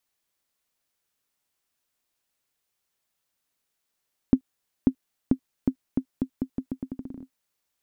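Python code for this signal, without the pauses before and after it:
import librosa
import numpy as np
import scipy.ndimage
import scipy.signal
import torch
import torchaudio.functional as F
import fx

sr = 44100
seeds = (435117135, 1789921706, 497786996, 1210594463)

y = fx.bouncing_ball(sr, first_gap_s=0.54, ratio=0.82, hz=261.0, decay_ms=79.0, level_db=-6.0)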